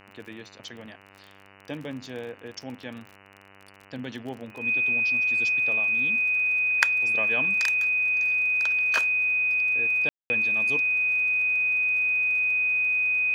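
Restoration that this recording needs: de-click; de-hum 98.2 Hz, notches 30; notch 2500 Hz, Q 30; room tone fill 10.09–10.3

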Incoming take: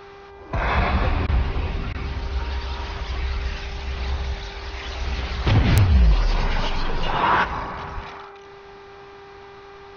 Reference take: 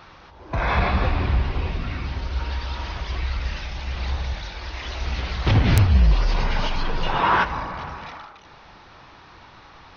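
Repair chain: de-hum 397.7 Hz, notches 6; de-plosive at 7.94; interpolate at 1.27/1.93, 14 ms

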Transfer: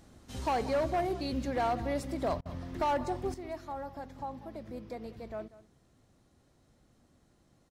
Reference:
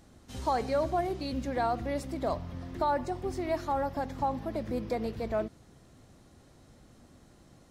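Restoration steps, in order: clip repair -25 dBFS; interpolate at 2.41, 44 ms; inverse comb 0.191 s -17.5 dB; gain correction +9.5 dB, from 3.34

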